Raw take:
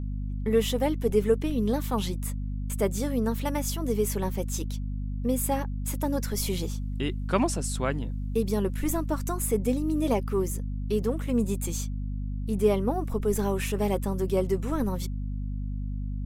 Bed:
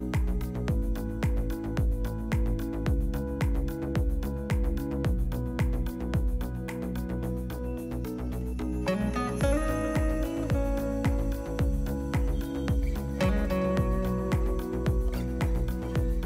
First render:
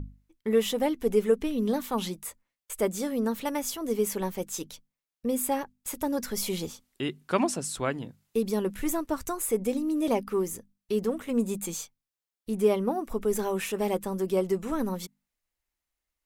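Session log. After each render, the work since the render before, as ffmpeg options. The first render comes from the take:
-af "bandreject=f=50:t=h:w=6,bandreject=f=100:t=h:w=6,bandreject=f=150:t=h:w=6,bandreject=f=200:t=h:w=6,bandreject=f=250:t=h:w=6"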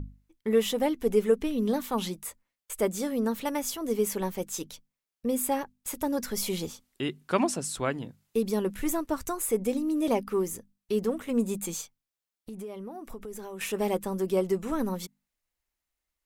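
-filter_complex "[0:a]asettb=1/sr,asplit=3[s0][s1][s2];[s0]atrim=end=11.814[s3];[s1]atrim=start=11.81:end=13.61,asetpts=PTS-STARTPTS,afade=t=in:d=0.004:c=qsin,afade=t=out:st=1.796:d=0.004:c=qsin,acompressor=threshold=0.0141:ratio=6:attack=3.2:release=140:knee=1:detection=peak[s4];[s2]atrim=start=13.606[s5];[s3][s4]acrossfade=d=0.004:c1=hsin:c2=qsin[s6];[s6][s5]acrossfade=d=0.004:c1=qsin:c2=hsin"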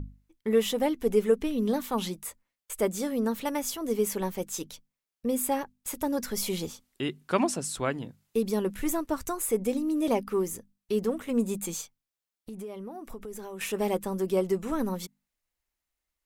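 -af anull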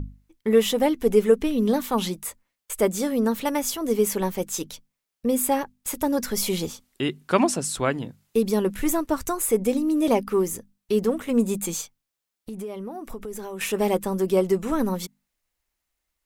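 -af "volume=1.88"

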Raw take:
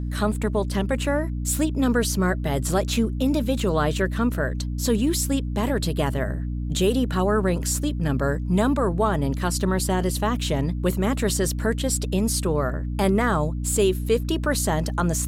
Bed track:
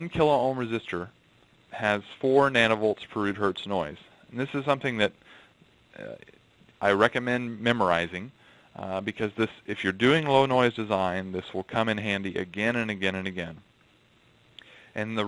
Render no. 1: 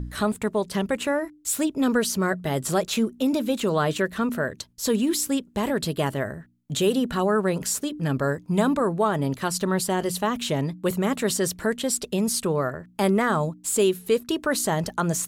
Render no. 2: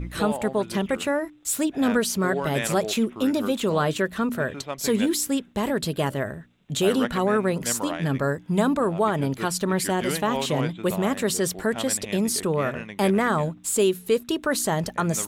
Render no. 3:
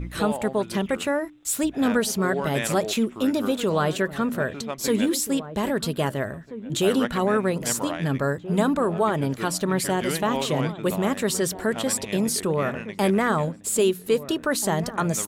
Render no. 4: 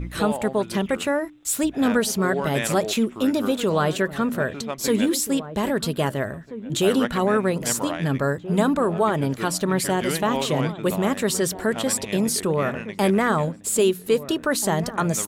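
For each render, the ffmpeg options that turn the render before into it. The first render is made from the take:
-af "bandreject=f=60:t=h:w=4,bandreject=f=120:t=h:w=4,bandreject=f=180:t=h:w=4,bandreject=f=240:t=h:w=4,bandreject=f=300:t=h:w=4"
-filter_complex "[1:a]volume=0.376[s0];[0:a][s0]amix=inputs=2:normalize=0"
-filter_complex "[0:a]asplit=2[s0][s1];[s1]adelay=1633,volume=0.224,highshelf=f=4000:g=-36.7[s2];[s0][s2]amix=inputs=2:normalize=0"
-af "volume=1.19"

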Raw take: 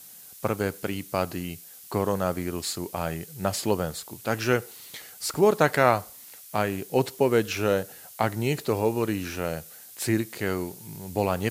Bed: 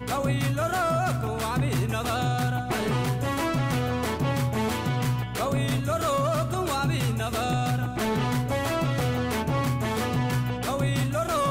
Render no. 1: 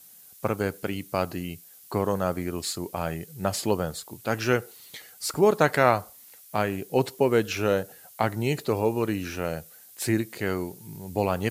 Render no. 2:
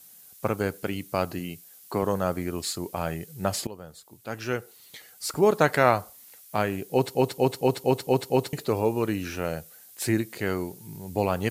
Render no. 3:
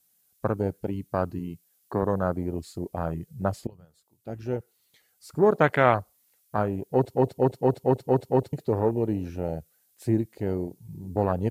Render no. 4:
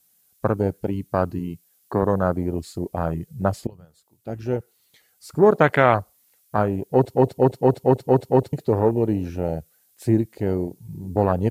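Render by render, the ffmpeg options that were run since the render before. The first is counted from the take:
-af "afftdn=nr=6:nf=-47"
-filter_complex "[0:a]asettb=1/sr,asplit=3[s0][s1][s2];[s0]atrim=end=1.394[s3];[s1]atrim=start=1.39:end=2.03,asetpts=PTS-STARTPTS,afade=t=in:d=0.004:c=qsin,afade=t=out:st=0.636:d=0.004:c=qsin,highpass=120[s4];[s2]atrim=start=2.026[s5];[s3][s4]acrossfade=d=0.004:c1=hsin:c2=qsin[s6];[s6][s5]acrossfade=d=0.004:c1=qsin:c2=hsin,asplit=9[s7][s8][s9][s10][s11][s12][s13][s14][s15];[s7]atrim=end=3.67,asetpts=PTS-STARTPTS,afade=t=out:st=3.666:d=0.004:c=hsin:silence=0.11885[s16];[s8]atrim=start=3.67:end=7.152,asetpts=PTS-STARTPTS,afade=t=in:d=1.91:silence=0.11885[s17];[s9]atrim=start=6.918:end=7.152[s18];[s10]atrim=start=6.918:end=7.152[s19];[s11]atrim=start=6.918:end=7.152[s20];[s12]atrim=start=6.918:end=7.152[s21];[s13]atrim=start=6.918:end=7.152[s22];[s14]atrim=start=6.918:end=7.152[s23];[s15]atrim=start=8.528[s24];[s16][s17]concat=n=2:v=0:a=1[s25];[s25][s18]acrossfade=d=0.004:c1=hsin:c2=hsin[s26];[s26][s19]acrossfade=d=0.004:c1=hsin:c2=hsin[s27];[s27][s20]acrossfade=d=0.004:c1=hsin:c2=hsin[s28];[s28][s21]acrossfade=d=0.004:c1=hsin:c2=hsin[s29];[s29][s22]acrossfade=d=0.004:c1=hsin:c2=hsin[s30];[s30][s23]acrossfade=d=0.004:c1=hsin:c2=hsin[s31];[s31][s24]acrossfade=d=0.004:c1=hsin:c2=hsin"
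-af "lowshelf=f=76:g=8.5,afwtdn=0.0447"
-af "volume=1.78,alimiter=limit=0.794:level=0:latency=1"

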